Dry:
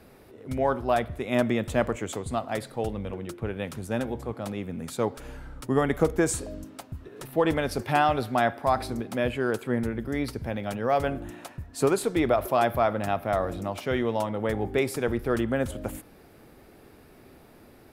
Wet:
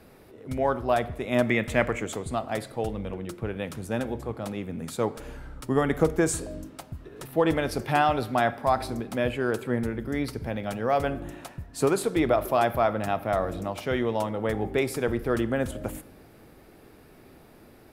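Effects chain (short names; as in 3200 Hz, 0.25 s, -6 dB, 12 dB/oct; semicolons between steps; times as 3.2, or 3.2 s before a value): 1.48–2 bell 2100 Hz +11 dB 0.59 oct; on a send: reverb RT60 1.1 s, pre-delay 6 ms, DRR 16 dB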